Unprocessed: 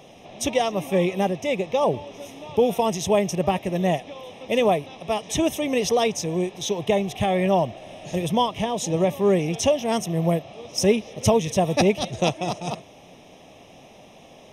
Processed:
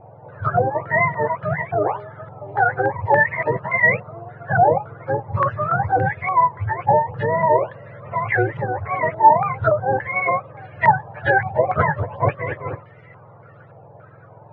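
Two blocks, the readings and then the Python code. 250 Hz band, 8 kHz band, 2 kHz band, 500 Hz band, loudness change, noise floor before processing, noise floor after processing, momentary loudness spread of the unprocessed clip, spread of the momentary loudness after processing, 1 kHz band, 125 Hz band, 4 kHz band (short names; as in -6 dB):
-8.0 dB, under -40 dB, +13.0 dB, 0.0 dB, +3.5 dB, -48 dBFS, -45 dBFS, 8 LU, 12 LU, +9.5 dB, +3.5 dB, under -20 dB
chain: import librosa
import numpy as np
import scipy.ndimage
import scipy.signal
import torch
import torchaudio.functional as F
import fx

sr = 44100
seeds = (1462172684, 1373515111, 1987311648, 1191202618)

y = fx.octave_mirror(x, sr, pivot_hz=600.0)
y = fx.filter_held_lowpass(y, sr, hz=3.5, low_hz=830.0, high_hz=2000.0)
y = F.gain(torch.from_numpy(y), 1.0).numpy()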